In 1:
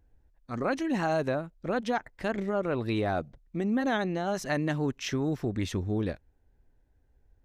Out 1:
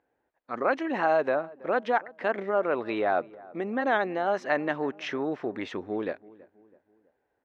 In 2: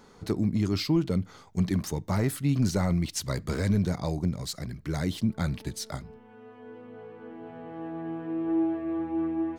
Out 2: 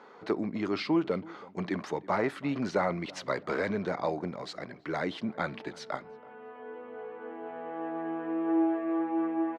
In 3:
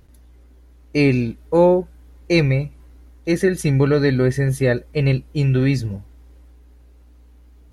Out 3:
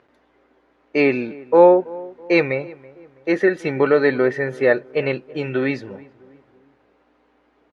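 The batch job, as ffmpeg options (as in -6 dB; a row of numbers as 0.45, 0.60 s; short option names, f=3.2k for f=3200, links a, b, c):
-filter_complex "[0:a]highpass=450,lowpass=2.2k,asplit=2[a][b];[b]adelay=327,lowpass=f=1.3k:p=1,volume=-20.5dB,asplit=2[c][d];[d]adelay=327,lowpass=f=1.3k:p=1,volume=0.46,asplit=2[e][f];[f]adelay=327,lowpass=f=1.3k:p=1,volume=0.46[g];[c][e][g]amix=inputs=3:normalize=0[h];[a][h]amix=inputs=2:normalize=0,volume=6dB"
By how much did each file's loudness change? +2.0, -3.5, 0.0 LU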